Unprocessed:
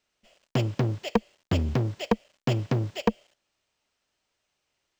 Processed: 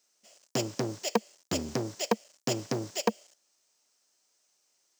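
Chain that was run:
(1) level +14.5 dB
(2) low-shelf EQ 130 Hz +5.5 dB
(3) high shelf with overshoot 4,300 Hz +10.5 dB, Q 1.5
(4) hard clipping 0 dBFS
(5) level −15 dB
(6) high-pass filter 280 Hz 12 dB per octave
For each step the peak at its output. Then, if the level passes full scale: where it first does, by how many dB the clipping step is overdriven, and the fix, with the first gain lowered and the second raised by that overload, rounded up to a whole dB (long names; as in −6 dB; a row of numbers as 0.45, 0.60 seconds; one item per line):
+4.5, +4.5, +6.0, 0.0, −15.0, −9.0 dBFS
step 1, 6.0 dB
step 1 +8.5 dB, step 5 −9 dB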